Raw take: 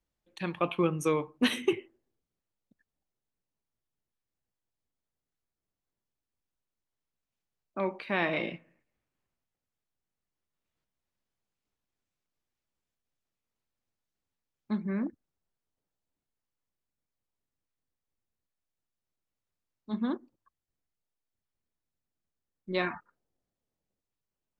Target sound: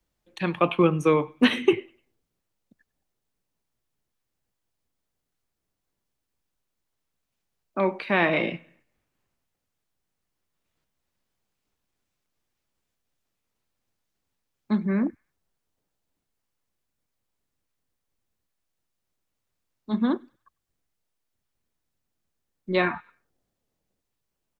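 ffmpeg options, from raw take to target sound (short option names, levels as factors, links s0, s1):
-filter_complex "[0:a]acrossover=split=150|1300|3800[s0][s1][s2][s3];[s2]aecho=1:1:99|198|297:0.0794|0.0286|0.0103[s4];[s3]acompressor=threshold=0.00178:ratio=6[s5];[s0][s1][s4][s5]amix=inputs=4:normalize=0,volume=2.37"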